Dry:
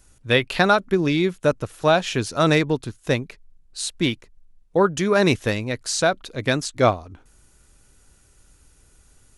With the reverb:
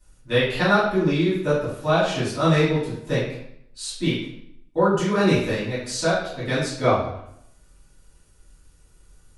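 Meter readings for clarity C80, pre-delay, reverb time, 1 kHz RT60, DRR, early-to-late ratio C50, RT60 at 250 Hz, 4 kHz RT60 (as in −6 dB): 5.5 dB, 3 ms, 0.70 s, 0.70 s, −12.0 dB, 2.0 dB, 0.80 s, 0.60 s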